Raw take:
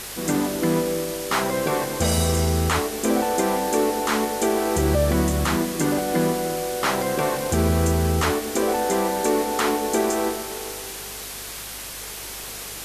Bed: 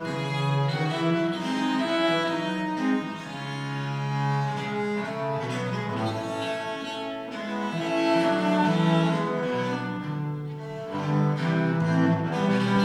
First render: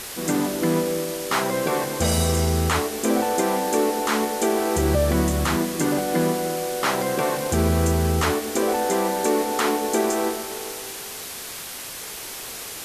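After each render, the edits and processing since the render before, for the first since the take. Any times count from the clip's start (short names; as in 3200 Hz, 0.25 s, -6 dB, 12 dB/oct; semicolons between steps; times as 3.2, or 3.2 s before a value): de-hum 50 Hz, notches 4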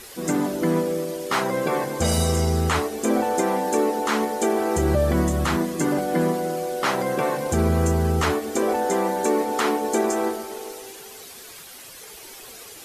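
denoiser 10 dB, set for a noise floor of -35 dBFS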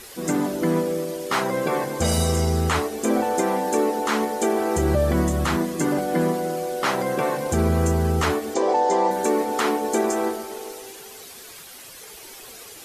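8.54–9.11 speaker cabinet 130–7100 Hz, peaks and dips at 220 Hz -10 dB, 550 Hz +4 dB, 910 Hz +9 dB, 1400 Hz -9 dB, 2500 Hz -4 dB, 4700 Hz +3 dB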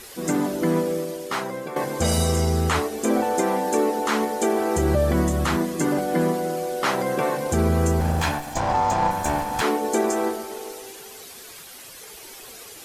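0.94–1.76 fade out, to -11.5 dB; 8–9.62 minimum comb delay 1.2 ms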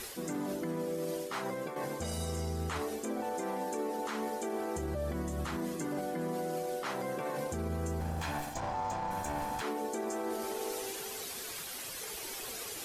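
reverse; compressor 4:1, threshold -32 dBFS, peak gain reduction 13.5 dB; reverse; limiter -27.5 dBFS, peak gain reduction 6 dB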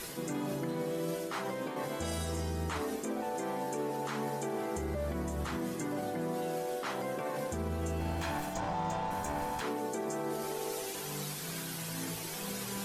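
add bed -19 dB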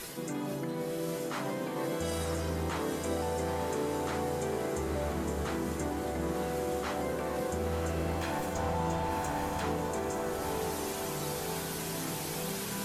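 diffused feedback echo 0.998 s, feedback 59%, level -3.5 dB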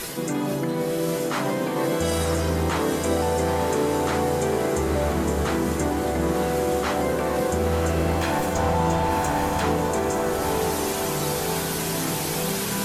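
gain +10 dB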